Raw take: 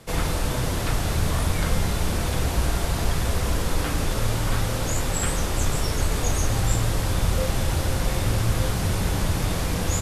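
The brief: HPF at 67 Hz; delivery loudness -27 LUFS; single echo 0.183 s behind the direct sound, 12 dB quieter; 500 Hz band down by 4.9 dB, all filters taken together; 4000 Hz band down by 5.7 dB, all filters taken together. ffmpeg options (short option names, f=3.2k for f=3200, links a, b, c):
-af "highpass=67,equalizer=f=500:t=o:g=-6,equalizer=f=4k:t=o:g=-7.5,aecho=1:1:183:0.251,volume=0.5dB"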